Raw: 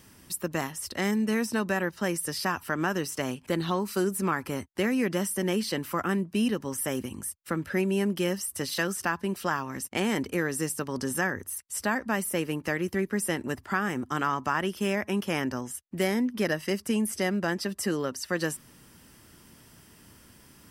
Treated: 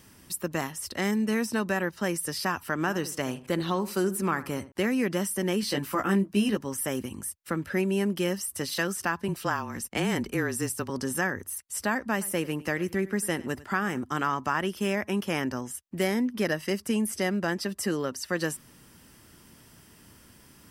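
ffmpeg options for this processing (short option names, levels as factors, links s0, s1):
-filter_complex "[0:a]asettb=1/sr,asplit=3[s0][s1][s2];[s0]atrim=end=2.794[s3];[s1]atrim=start=2.79:end=4.72,asetpts=PTS-STARTPTS,afade=t=in:d=0.004:c=qsin,afade=t=out:st=1.926:d=0.004:c=qsin,asplit=2[s4][s5];[s5]adelay=76,lowpass=f=2000:p=1,volume=0.178,asplit=2[s6][s7];[s7]adelay=76,lowpass=f=2000:p=1,volume=0.31,asplit=2[s8][s9];[s9]adelay=76,lowpass=f=2000:p=1,volume=0.31[s10];[s4][s6][s8][s10]amix=inputs=4:normalize=0,atrim=end_sample=85113[s11];[s2]atrim=start=4.716[s12];[s3][s11]acrossfade=d=0.004:c1=hsin:c2=qsin[s13];[s13][s12]acrossfade=d=0.004:c1=qsin:c2=hsin,asettb=1/sr,asplit=3[s14][s15][s16];[s14]atrim=end=5.614[s17];[s15]atrim=start=5.61:end=6.57,asetpts=PTS-STARTPTS,afade=t=in:d=0.004:c=qsin,afade=t=out:st=0.956:d=0.004:c=qsin,asplit=2[s18][s19];[s19]adelay=15,volume=0.668[s20];[s18][s20]amix=inputs=2:normalize=0,atrim=end_sample=42336[s21];[s16]atrim=start=6.566[s22];[s17][s21]acrossfade=d=0.004:c1=hsin:c2=qsin[s23];[s23][s22]acrossfade=d=0.004:c1=qsin:c2=hsin,asettb=1/sr,asplit=3[s24][s25][s26];[s24]atrim=end=9.284[s27];[s25]atrim=start=9.28:end=10.9,asetpts=PTS-STARTPTS,afade=t=in:d=0.004:c=qsin,afade=t=out:st=1.616:d=0.004:c=qsin,afreqshift=-27[s28];[s26]atrim=start=10.896[s29];[s27][s28]acrossfade=d=0.004:c1=hsin:c2=qsin[s30];[s30][s29]acrossfade=d=0.004:c1=qsin:c2=hsin,asettb=1/sr,asplit=3[s31][s32][s33];[s31]atrim=end=12.114[s34];[s32]atrim=start=12.11:end=13.99,asetpts=PTS-STARTPTS,afade=t=in:d=0.004:c=qsin,afade=t=out:st=1.876:d=0.004:c=qsin,aecho=1:1:99:0.106,atrim=end_sample=82908[s35];[s33]atrim=start=13.986[s36];[s34][s35]acrossfade=d=0.004:c1=hsin:c2=qsin[s37];[s37][s36]acrossfade=d=0.004:c1=qsin:c2=hsin"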